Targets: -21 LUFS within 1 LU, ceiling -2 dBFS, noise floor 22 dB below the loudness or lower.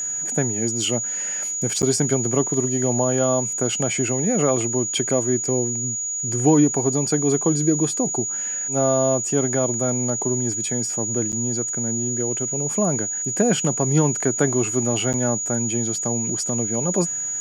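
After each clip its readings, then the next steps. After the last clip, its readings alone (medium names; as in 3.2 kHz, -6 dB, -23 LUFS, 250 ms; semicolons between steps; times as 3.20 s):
dropouts 3; longest dropout 8.8 ms; steady tone 6.8 kHz; tone level -24 dBFS; loudness -20.5 LUFS; peak level -6.0 dBFS; loudness target -21.0 LUFS
-> interpolate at 1.82/11.32/15.13 s, 8.8 ms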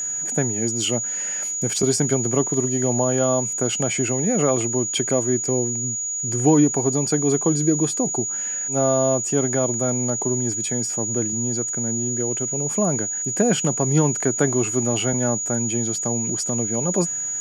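dropouts 0; steady tone 6.8 kHz; tone level -24 dBFS
-> band-stop 6.8 kHz, Q 30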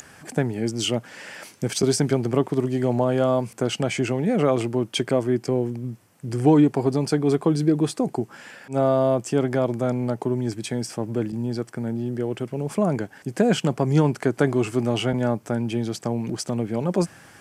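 steady tone not found; loudness -23.5 LUFS; peak level -7.0 dBFS; loudness target -21.0 LUFS
-> trim +2.5 dB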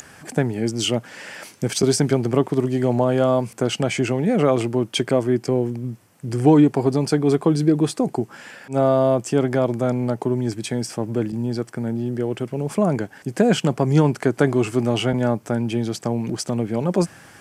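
loudness -21.0 LUFS; peak level -4.5 dBFS; noise floor -48 dBFS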